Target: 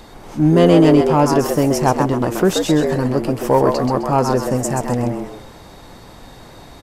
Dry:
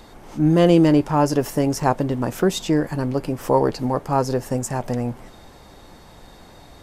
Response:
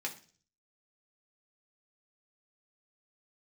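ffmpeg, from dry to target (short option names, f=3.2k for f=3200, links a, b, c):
-filter_complex "[0:a]asplit=5[a][b][c][d][e];[b]adelay=130,afreqshift=97,volume=-6dB[f];[c]adelay=260,afreqshift=194,volume=-15.6dB[g];[d]adelay=390,afreqshift=291,volume=-25.3dB[h];[e]adelay=520,afreqshift=388,volume=-34.9dB[i];[a][f][g][h][i]amix=inputs=5:normalize=0,acontrast=29,volume=-1dB"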